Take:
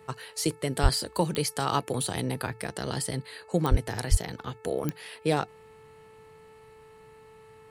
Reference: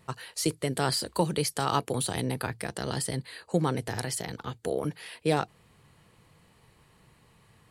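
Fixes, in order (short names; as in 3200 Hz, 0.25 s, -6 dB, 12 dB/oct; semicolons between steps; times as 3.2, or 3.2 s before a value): de-click; de-hum 438.5 Hz, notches 6; 0.82–0.94 HPF 140 Hz 24 dB/oct; 3.7–3.82 HPF 140 Hz 24 dB/oct; 4.1–4.22 HPF 140 Hz 24 dB/oct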